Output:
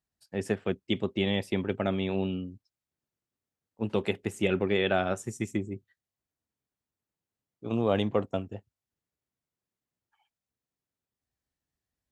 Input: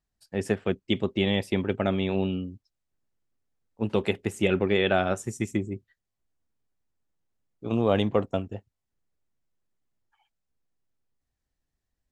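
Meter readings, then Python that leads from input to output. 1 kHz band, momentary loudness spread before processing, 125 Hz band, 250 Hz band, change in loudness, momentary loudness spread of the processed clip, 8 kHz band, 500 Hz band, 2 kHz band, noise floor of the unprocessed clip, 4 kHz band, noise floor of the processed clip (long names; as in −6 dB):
−3.0 dB, 12 LU, −3.5 dB, −3.0 dB, −3.0 dB, 12 LU, −3.0 dB, −3.0 dB, −3.0 dB, −84 dBFS, −3.0 dB, below −85 dBFS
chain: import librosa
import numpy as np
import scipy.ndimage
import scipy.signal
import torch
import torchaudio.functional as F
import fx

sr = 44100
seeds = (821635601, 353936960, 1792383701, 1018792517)

y = scipy.signal.sosfilt(scipy.signal.butter(2, 70.0, 'highpass', fs=sr, output='sos'), x)
y = y * librosa.db_to_amplitude(-3.0)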